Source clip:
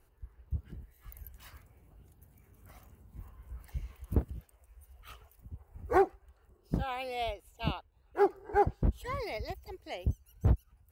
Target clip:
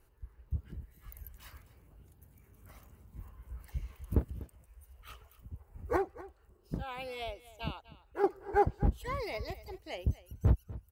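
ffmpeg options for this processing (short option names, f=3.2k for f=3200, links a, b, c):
-filter_complex "[0:a]bandreject=f=730:w=12,asettb=1/sr,asplit=3[a][b][c];[a]atrim=end=5.964[d];[b]atrim=start=5.96:end=8.24,asetpts=PTS-STARTPTS,afade=t=in:d=0.004:c=qsin,afade=t=out:st=2.276:d=0.004:c=qsin,acompressor=threshold=-42dB:ratio=1.5[e];[c]atrim=start=8.236[f];[d][e]acrossfade=d=0.004:c1=hsin:c2=qsin[g];[g][f]acrossfade=d=0.004:c1=qsin:c2=hsin,aecho=1:1:246:0.133"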